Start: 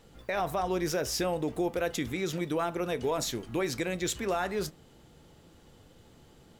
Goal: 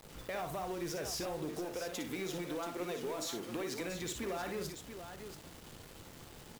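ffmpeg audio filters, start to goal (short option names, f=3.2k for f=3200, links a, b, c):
-filter_complex "[0:a]asettb=1/sr,asplit=3[a][b][c];[a]atrim=end=1.504[d];[b]atrim=start=1.5:end=3.81,asetpts=PTS-STARTPTS,afade=t=in:d=0.004:c=qsin,afade=t=out:st=2.306:d=0.004:c=qsin,highpass=200[e];[c]atrim=start=3.806[f];[d][e]acrossfade=d=0.004:c1=hsin:c2=qsin[g];[g][f]acrossfade=d=0.004:c1=qsin:c2=hsin,acompressor=threshold=-36dB:ratio=8,asoftclip=type=tanh:threshold=-34.5dB,acrusher=bits=8:mix=0:aa=0.000001,aecho=1:1:58|683:0.422|0.355,volume=1.5dB"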